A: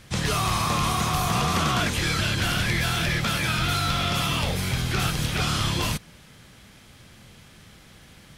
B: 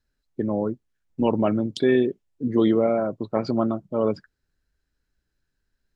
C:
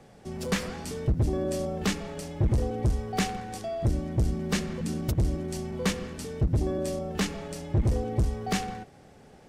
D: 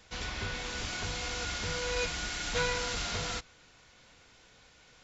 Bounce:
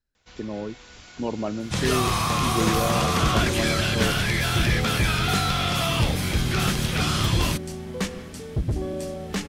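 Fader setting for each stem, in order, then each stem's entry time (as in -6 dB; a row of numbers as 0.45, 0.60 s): +0.5, -7.0, -0.5, -9.5 dB; 1.60, 0.00, 2.15, 0.15 s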